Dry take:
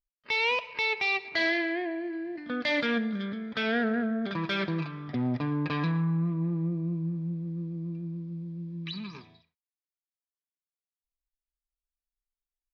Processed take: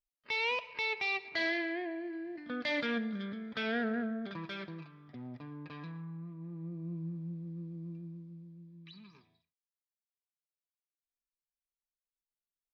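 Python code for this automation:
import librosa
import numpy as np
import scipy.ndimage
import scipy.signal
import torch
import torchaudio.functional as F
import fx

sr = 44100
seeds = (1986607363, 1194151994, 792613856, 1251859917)

y = fx.gain(x, sr, db=fx.line((4.02, -6.0), (4.91, -16.5), (6.37, -16.5), (6.97, -8.0), (7.95, -8.0), (8.75, -16.0)))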